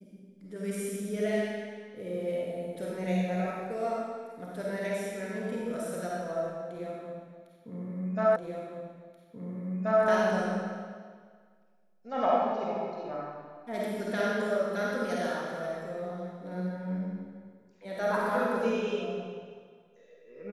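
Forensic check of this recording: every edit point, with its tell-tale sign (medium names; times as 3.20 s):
8.36 s: repeat of the last 1.68 s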